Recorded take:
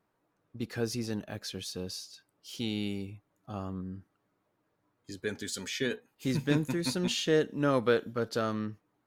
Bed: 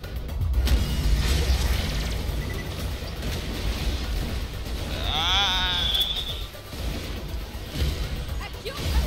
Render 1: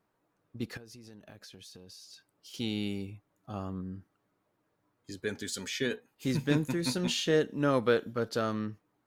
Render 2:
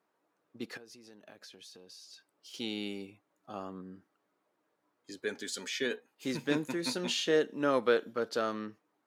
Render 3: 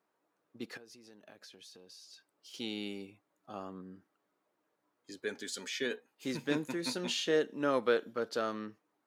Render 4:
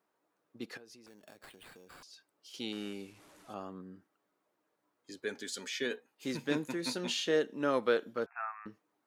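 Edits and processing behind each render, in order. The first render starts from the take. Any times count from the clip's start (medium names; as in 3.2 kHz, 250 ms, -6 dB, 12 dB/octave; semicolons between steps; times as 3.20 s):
0.77–2.54 s: compression 20:1, threshold -46 dBFS; 6.80–7.35 s: doubling 24 ms -11.5 dB
high-pass 290 Hz 12 dB/octave; treble shelf 11 kHz -8 dB
trim -2 dB
1.06–2.03 s: sample-rate reducer 6.1 kHz; 2.72–3.54 s: one-bit delta coder 64 kbps, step -53.5 dBFS; 8.26–8.66 s: brick-wall FIR band-pass 680–2700 Hz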